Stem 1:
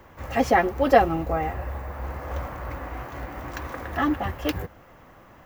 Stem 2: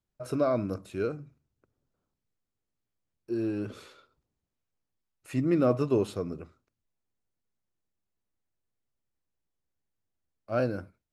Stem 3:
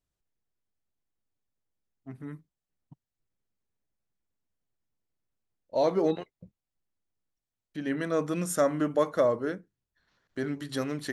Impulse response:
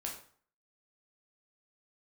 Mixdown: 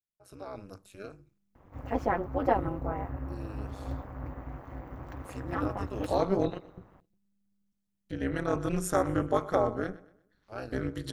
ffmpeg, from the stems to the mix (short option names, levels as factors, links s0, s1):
-filter_complex "[0:a]tiltshelf=f=1300:g=8.5,adelay=1550,volume=0.376[s0];[1:a]highshelf=f=3900:g=9.5,dynaudnorm=f=140:g=7:m=2.82,volume=0.168[s1];[2:a]lowshelf=f=330:g=10,adelay=350,volume=1.06,asplit=2[s2][s3];[s3]volume=0.119,aecho=0:1:119|238|357|476|595:1|0.36|0.13|0.0467|0.0168[s4];[s0][s1][s2][s4]amix=inputs=4:normalize=0,equalizer=f=310:t=o:w=2.4:g=-3.5,tremolo=f=200:d=0.919,adynamicequalizer=threshold=0.00398:dfrequency=1300:dqfactor=2.3:tfrequency=1300:tqfactor=2.3:attack=5:release=100:ratio=0.375:range=2.5:mode=boostabove:tftype=bell"